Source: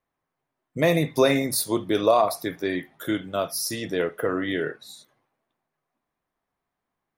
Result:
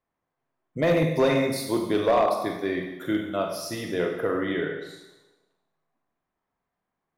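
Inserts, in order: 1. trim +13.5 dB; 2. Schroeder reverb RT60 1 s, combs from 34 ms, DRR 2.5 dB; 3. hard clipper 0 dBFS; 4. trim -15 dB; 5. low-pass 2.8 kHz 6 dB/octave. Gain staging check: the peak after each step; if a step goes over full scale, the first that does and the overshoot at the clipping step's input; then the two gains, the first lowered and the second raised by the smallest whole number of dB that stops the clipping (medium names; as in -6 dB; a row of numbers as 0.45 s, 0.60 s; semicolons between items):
+5.5 dBFS, +7.5 dBFS, 0.0 dBFS, -15.0 dBFS, -15.0 dBFS; step 1, 7.5 dB; step 1 +5.5 dB, step 4 -7 dB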